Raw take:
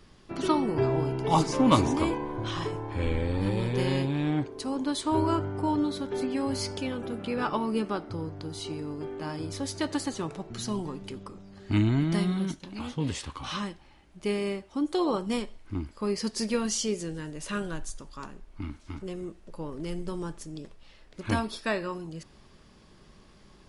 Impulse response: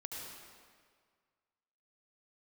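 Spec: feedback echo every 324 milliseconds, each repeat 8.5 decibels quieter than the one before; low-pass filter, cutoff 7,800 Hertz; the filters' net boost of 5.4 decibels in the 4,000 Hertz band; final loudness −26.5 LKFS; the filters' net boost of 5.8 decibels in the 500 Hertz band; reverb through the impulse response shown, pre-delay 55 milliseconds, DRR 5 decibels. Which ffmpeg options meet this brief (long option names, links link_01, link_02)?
-filter_complex "[0:a]lowpass=7800,equalizer=frequency=500:width_type=o:gain=7.5,equalizer=frequency=4000:width_type=o:gain=7,aecho=1:1:324|648|972|1296:0.376|0.143|0.0543|0.0206,asplit=2[link_01][link_02];[1:a]atrim=start_sample=2205,adelay=55[link_03];[link_02][link_03]afir=irnorm=-1:irlink=0,volume=-4dB[link_04];[link_01][link_04]amix=inputs=2:normalize=0,volume=-1dB"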